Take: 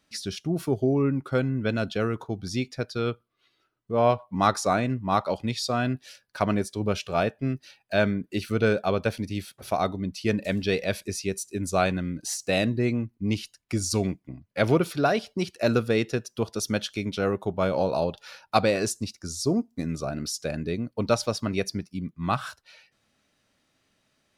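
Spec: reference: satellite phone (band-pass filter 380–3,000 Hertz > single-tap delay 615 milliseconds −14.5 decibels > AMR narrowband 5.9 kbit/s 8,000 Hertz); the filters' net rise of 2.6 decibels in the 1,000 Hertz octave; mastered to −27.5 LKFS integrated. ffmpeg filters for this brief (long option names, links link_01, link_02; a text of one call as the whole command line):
ffmpeg -i in.wav -af "highpass=380,lowpass=3000,equalizer=frequency=1000:width_type=o:gain=4,aecho=1:1:615:0.188,volume=2dB" -ar 8000 -c:a libopencore_amrnb -b:a 5900 out.amr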